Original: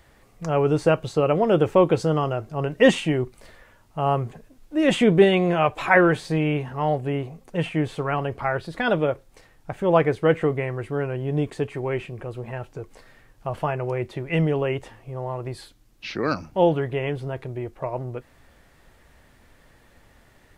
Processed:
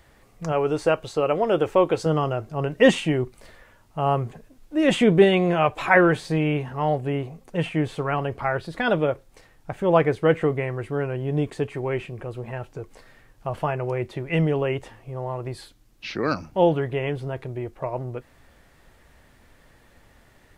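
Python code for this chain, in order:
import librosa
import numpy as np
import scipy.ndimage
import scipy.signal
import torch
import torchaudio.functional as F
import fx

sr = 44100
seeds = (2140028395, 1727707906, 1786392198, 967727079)

y = fx.peak_eq(x, sr, hz=150.0, db=-8.5, octaves=1.8, at=(0.52, 2.06))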